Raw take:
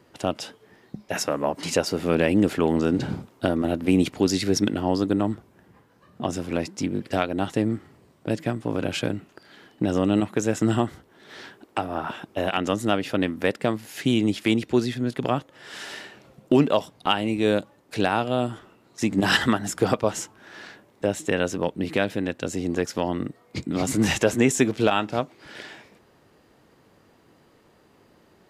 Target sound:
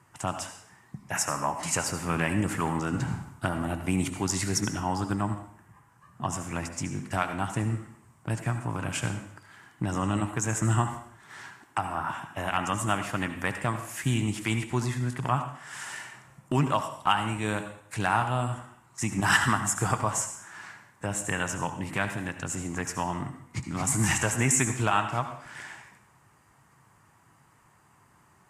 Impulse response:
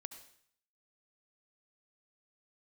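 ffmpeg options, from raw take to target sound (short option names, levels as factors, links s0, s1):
-filter_complex "[0:a]equalizer=f=125:t=o:w=1:g=9,equalizer=f=250:t=o:w=1:g=-5,equalizer=f=500:t=o:w=1:g=-11,equalizer=f=1000:t=o:w=1:g=10,equalizer=f=2000:t=o:w=1:g=4,equalizer=f=4000:t=o:w=1:g=-10,equalizer=f=8000:t=o:w=1:g=12[s0];[1:a]atrim=start_sample=2205[s1];[s0][s1]afir=irnorm=-1:irlink=0" -ar 44100 -c:a libvorbis -b:a 48k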